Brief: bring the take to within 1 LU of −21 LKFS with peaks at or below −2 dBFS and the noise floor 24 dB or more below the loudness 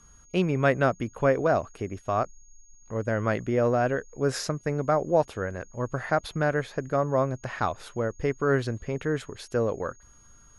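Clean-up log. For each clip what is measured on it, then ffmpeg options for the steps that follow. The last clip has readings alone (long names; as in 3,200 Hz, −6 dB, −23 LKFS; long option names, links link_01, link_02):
interfering tone 6,600 Hz; level of the tone −56 dBFS; integrated loudness −27.5 LKFS; sample peak −9.0 dBFS; target loudness −21.0 LKFS
→ -af "bandreject=frequency=6600:width=30"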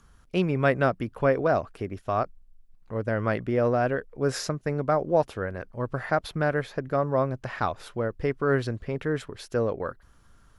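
interfering tone none found; integrated loudness −27.5 LKFS; sample peak −9.0 dBFS; target loudness −21.0 LKFS
→ -af "volume=6.5dB"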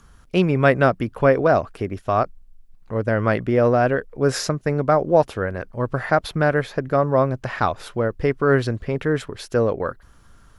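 integrated loudness −21.0 LKFS; sample peak −2.5 dBFS; background noise floor −50 dBFS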